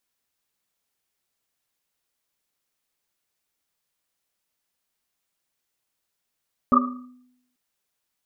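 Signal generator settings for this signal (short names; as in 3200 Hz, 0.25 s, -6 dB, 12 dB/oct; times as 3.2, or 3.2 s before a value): Risset drum length 0.84 s, pitch 250 Hz, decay 0.83 s, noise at 1200 Hz, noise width 110 Hz, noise 55%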